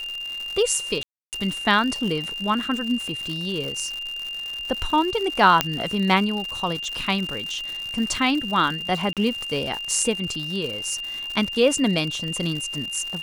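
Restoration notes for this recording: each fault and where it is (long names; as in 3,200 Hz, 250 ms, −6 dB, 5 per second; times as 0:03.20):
surface crackle 150 per second −28 dBFS
whistle 2,800 Hz −29 dBFS
0:01.03–0:01.33: drop-out 298 ms
0:05.61: click −2 dBFS
0:09.13–0:09.17: drop-out 37 ms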